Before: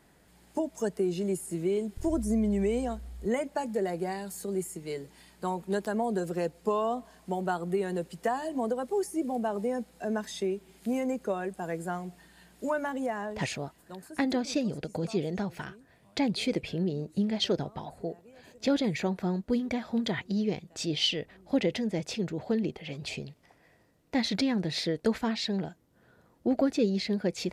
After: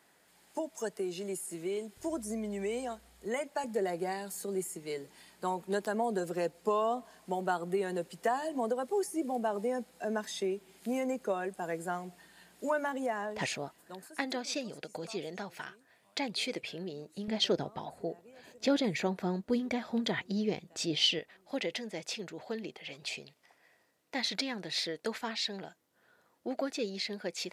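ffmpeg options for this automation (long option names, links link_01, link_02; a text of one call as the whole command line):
ffmpeg -i in.wav -af "asetnsamples=nb_out_samples=441:pad=0,asendcmd='3.64 highpass f 330;14.06 highpass f 890;17.28 highpass f 250;21.19 highpass f 980',highpass=frequency=740:poles=1" out.wav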